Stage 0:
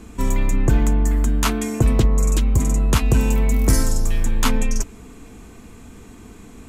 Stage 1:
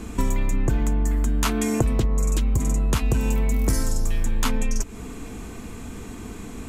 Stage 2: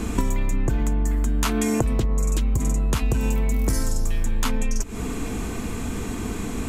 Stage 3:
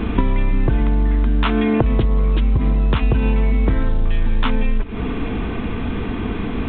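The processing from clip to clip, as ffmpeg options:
-af "acompressor=threshold=-24dB:ratio=6,volume=5.5dB"
-af "acompressor=threshold=-26dB:ratio=6,volume=7.5dB"
-af "volume=5.5dB" -ar 8000 -c:a pcm_alaw

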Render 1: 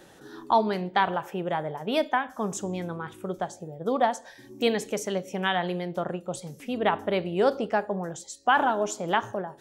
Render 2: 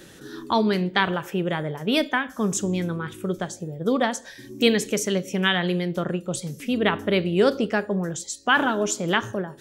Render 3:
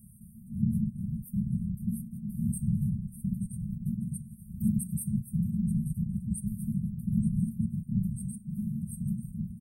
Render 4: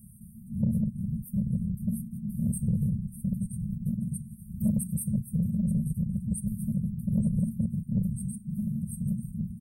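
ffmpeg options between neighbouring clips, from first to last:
-af "equalizer=f=790:t=o:w=1.1:g=-13,volume=8.5dB"
-filter_complex "[0:a]asplit=2[a][b];[b]adelay=882,lowpass=f=4.8k:p=1,volume=-9dB,asplit=2[c][d];[d]adelay=882,lowpass=f=4.8k:p=1,volume=0.28,asplit=2[e][f];[f]adelay=882,lowpass=f=4.8k:p=1,volume=0.28[g];[a][c][e][g]amix=inputs=4:normalize=0,afftfilt=real='hypot(re,im)*cos(2*PI*random(0))':imag='hypot(re,im)*sin(2*PI*random(1))':win_size=512:overlap=0.75,afftfilt=real='re*(1-between(b*sr/4096,230,8300))':imag='im*(1-between(b*sr/4096,230,8300))':win_size=4096:overlap=0.75,volume=4.5dB"
-af "asoftclip=type=tanh:threshold=-18.5dB,volume=2.5dB"

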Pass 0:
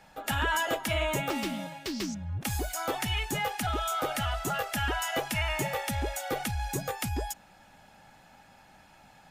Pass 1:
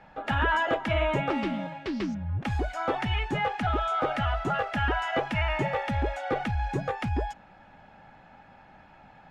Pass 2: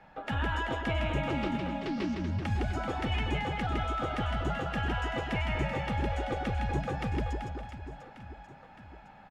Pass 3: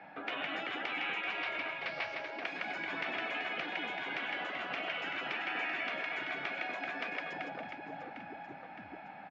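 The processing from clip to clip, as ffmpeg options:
-af "lowpass=2.2k,volume=4dB"
-filter_complex "[0:a]acrossover=split=330|3000[a][b][c];[b]acompressor=threshold=-34dB:ratio=3[d];[a][d][c]amix=inputs=3:normalize=0,aecho=1:1:160|384|697.6|1137|1751:0.631|0.398|0.251|0.158|0.1,volume=-3dB"
-af "afftfilt=real='re*lt(hypot(re,im),0.0447)':imag='im*lt(hypot(re,im),0.0447)':win_size=1024:overlap=0.75,highpass=f=120:w=0.5412,highpass=f=120:w=1.3066,equalizer=f=130:t=q:w=4:g=-6,equalizer=f=300:t=q:w=4:g=8,equalizer=f=710:t=q:w=4:g=9,equalizer=f=1.6k:t=q:w=4:g=5,equalizer=f=2.3k:t=q:w=4:g=10,lowpass=f=4.9k:w=0.5412,lowpass=f=4.9k:w=1.3066"

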